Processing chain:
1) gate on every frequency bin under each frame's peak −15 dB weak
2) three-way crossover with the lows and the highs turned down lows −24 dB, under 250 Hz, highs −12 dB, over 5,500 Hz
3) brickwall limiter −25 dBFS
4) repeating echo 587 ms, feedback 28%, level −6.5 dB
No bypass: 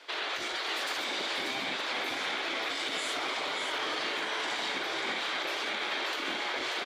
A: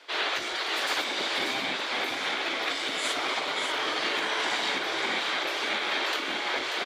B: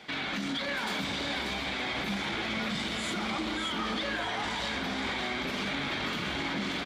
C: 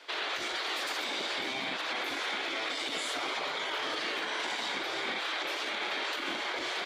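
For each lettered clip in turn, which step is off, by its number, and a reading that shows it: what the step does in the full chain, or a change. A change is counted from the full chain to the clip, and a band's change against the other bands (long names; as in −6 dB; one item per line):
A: 3, average gain reduction 3.5 dB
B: 1, 125 Hz band +18.5 dB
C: 4, change in crest factor −2.5 dB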